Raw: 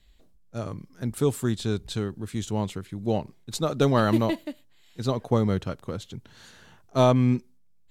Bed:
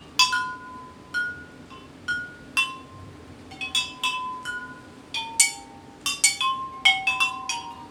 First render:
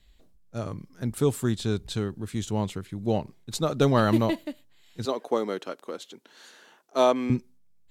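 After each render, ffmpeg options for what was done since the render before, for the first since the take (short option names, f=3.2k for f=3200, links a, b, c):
-filter_complex "[0:a]asettb=1/sr,asplit=3[a][b][c];[a]atrim=end=5.054[d];[b]atrim=start=5.05:end=7.3,asetpts=PTS-STARTPTS,afade=t=in:d=0.004:c=qsin,afade=t=out:st=2.246:d=0.004:c=qsin,highpass=f=290:w=0.5412,highpass=f=290:w=1.3066[e];[c]atrim=start=7.296[f];[d][e]acrossfade=d=0.004:c1=hsin:c2=qsin[g];[g][f]acrossfade=d=0.004:c1=qsin:c2=hsin"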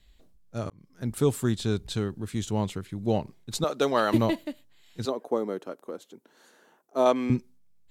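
-filter_complex "[0:a]asettb=1/sr,asplit=3[a][b][c];[a]atrim=end=3.644[d];[b]atrim=start=3.64:end=4.14,asetpts=PTS-STARTPTS,afade=t=in:d=0.004:c=qsin,afade=t=out:st=0.496:d=0.004:c=qsin,highpass=370[e];[c]atrim=start=4.136[f];[d][e]acrossfade=d=0.004:c1=hsin:c2=qsin[g];[g][f]acrossfade=d=0.004:c1=qsin:c2=hsin,asettb=1/sr,asplit=3[h][i][j];[h]atrim=end=5.094[k];[i]atrim=start=5.09:end=7.06,asetpts=PTS-STARTPTS,afade=t=in:d=0.004:c=qsin,afade=t=out:st=1.966:d=0.004:c=qsin,equalizer=f=3.5k:w=0.45:g=-12[l];[j]atrim=start=7.056[m];[k][l]acrossfade=d=0.004:c1=hsin:c2=qsin[n];[n][m]acrossfade=d=0.004:c1=qsin:c2=hsin,asplit=2[o][p];[o]atrim=end=0.7,asetpts=PTS-STARTPTS,afade=t=out:st=0.696:d=0.004:c=hsin[q];[p]atrim=start=0.7,asetpts=PTS-STARTPTS,afade=t=in:d=0.43[r];[q][r]concat=n=2:v=0:a=1"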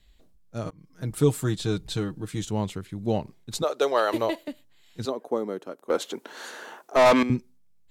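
-filter_complex "[0:a]asettb=1/sr,asplit=3[a][b][c];[a]atrim=end=0.644[d];[b]atrim=start=0.64:end=2.45,asetpts=PTS-STARTPTS,afade=t=in:d=0.004:c=qsin,afade=t=out:st=1.806:d=0.004:c=qsin,aecho=1:1:6.4:0.65,atrim=end_sample=79821[e];[c]atrim=start=2.446[f];[d][e]acrossfade=d=0.004:c1=hsin:c2=qsin[g];[g][f]acrossfade=d=0.004:c1=qsin:c2=hsin,asettb=1/sr,asplit=3[h][i][j];[h]atrim=end=3.624[k];[i]atrim=start=3.62:end=4.48,asetpts=PTS-STARTPTS,afade=t=in:d=0.004:c=qsin,afade=t=out:st=0.856:d=0.004:c=qsin,lowshelf=f=300:t=q:w=1.5:g=-12[l];[j]atrim=start=4.476[m];[k][l]acrossfade=d=0.004:c1=hsin:c2=qsin[n];[n][m]acrossfade=d=0.004:c1=qsin:c2=hsin,asettb=1/sr,asplit=3[o][p][q];[o]atrim=end=5.904[r];[p]atrim=start=5.9:end=7.23,asetpts=PTS-STARTPTS,afade=t=in:d=0.004:c=qsin,afade=t=out:st=1.326:d=0.004:c=qsin,asplit=2[s][t];[t]highpass=f=720:p=1,volume=27dB,asoftclip=type=tanh:threshold=-10dB[u];[s][u]amix=inputs=2:normalize=0,lowpass=f=5k:p=1,volume=-6dB[v];[q]atrim=start=7.226[w];[r][v]acrossfade=d=0.004:c1=hsin:c2=qsin[x];[x][w]acrossfade=d=0.004:c1=qsin:c2=hsin"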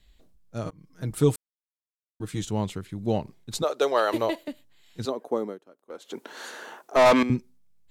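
-filter_complex "[0:a]asplit=5[a][b][c][d][e];[a]atrim=end=1.36,asetpts=PTS-STARTPTS,afade=t=out:st=1.356:d=0.004:c=hsin[f];[b]atrim=start=1.36:end=2.2,asetpts=PTS-STARTPTS,volume=0[g];[c]atrim=start=2.2:end=5.59,asetpts=PTS-STARTPTS,afade=t=in:d=0.004:c=hsin,afade=t=out:st=3.25:d=0.14:silence=0.158489[h];[d]atrim=start=5.59:end=6.04,asetpts=PTS-STARTPTS,volume=-16dB[i];[e]atrim=start=6.04,asetpts=PTS-STARTPTS,afade=t=in:d=0.14:silence=0.158489[j];[f][g][h][i][j]concat=n=5:v=0:a=1"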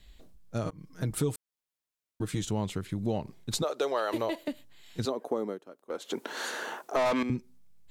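-filter_complex "[0:a]asplit=2[a][b];[b]alimiter=limit=-20.5dB:level=0:latency=1:release=25,volume=-3dB[c];[a][c]amix=inputs=2:normalize=0,acompressor=threshold=-29dB:ratio=3"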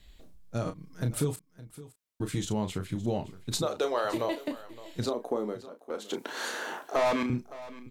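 -filter_complex "[0:a]asplit=2[a][b];[b]adelay=33,volume=-8.5dB[c];[a][c]amix=inputs=2:normalize=0,aecho=1:1:565:0.133"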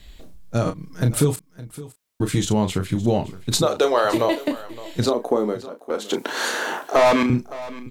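-af "volume=10.5dB"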